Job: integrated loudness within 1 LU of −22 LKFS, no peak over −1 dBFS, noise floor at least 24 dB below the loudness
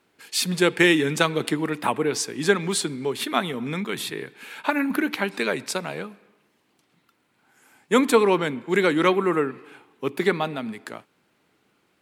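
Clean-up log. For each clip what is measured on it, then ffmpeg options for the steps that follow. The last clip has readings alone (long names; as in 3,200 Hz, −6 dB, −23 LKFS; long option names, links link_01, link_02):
integrated loudness −23.5 LKFS; sample peak −3.0 dBFS; target loudness −22.0 LKFS
→ -af "volume=1.5dB"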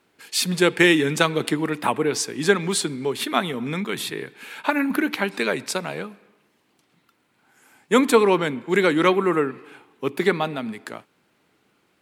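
integrated loudness −22.0 LKFS; sample peak −1.5 dBFS; background noise floor −66 dBFS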